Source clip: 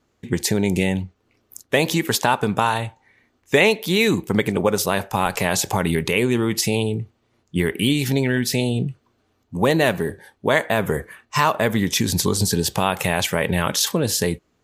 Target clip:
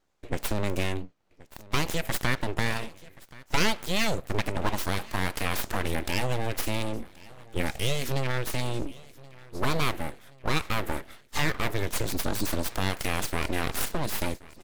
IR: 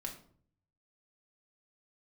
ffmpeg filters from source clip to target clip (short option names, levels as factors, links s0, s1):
-af "aecho=1:1:1077|2154|3231|4308:0.0841|0.0454|0.0245|0.0132,aeval=exprs='abs(val(0))':c=same,volume=0.501"